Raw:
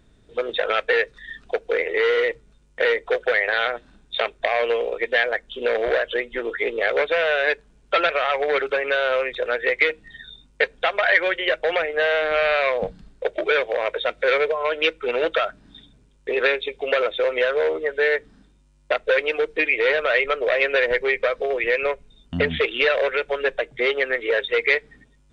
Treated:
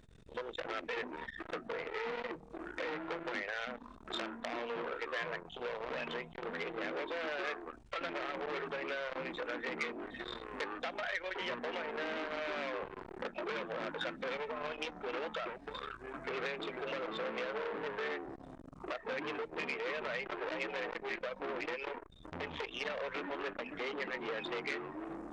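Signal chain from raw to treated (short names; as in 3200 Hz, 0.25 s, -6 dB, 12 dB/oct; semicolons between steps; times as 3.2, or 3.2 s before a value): compressor 4:1, threshold -37 dBFS, peak gain reduction 20 dB; echoes that change speed 0.141 s, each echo -6 st, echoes 3, each echo -6 dB; core saturation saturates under 3100 Hz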